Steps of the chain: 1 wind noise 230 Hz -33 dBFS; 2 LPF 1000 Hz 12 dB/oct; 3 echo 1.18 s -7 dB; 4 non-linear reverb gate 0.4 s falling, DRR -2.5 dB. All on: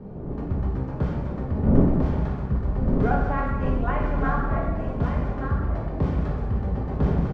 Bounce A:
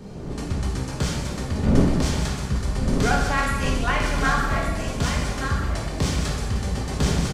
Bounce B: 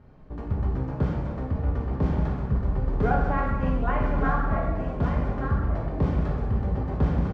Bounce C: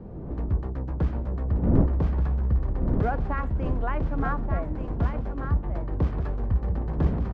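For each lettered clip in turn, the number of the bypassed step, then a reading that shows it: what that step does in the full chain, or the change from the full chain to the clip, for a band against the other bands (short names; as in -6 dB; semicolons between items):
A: 2, 2 kHz band +9.5 dB; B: 1, 250 Hz band -3.0 dB; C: 4, echo-to-direct 3.5 dB to -7.0 dB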